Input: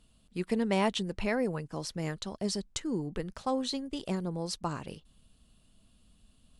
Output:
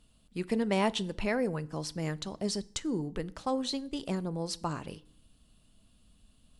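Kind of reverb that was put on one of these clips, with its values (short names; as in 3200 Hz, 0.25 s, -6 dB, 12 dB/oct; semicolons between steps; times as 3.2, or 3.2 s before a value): FDN reverb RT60 0.59 s, low-frequency decay 1.45×, high-frequency decay 0.85×, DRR 17 dB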